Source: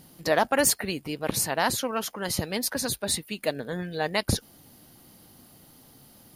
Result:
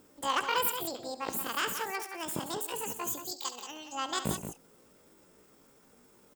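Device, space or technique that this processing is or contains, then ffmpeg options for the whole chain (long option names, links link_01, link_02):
chipmunk voice: -filter_complex "[0:a]asplit=3[link_01][link_02][link_03];[link_01]afade=type=out:start_time=3.31:duration=0.02[link_04];[link_02]tiltshelf=frequency=1400:gain=-9,afade=type=in:start_time=3.31:duration=0.02,afade=type=out:start_time=3.95:duration=0.02[link_05];[link_03]afade=type=in:start_time=3.95:duration=0.02[link_06];[link_04][link_05][link_06]amix=inputs=3:normalize=0,asetrate=76340,aresample=44100,atempo=0.577676,aecho=1:1:69|122|178:0.224|0.112|0.355,volume=-7dB"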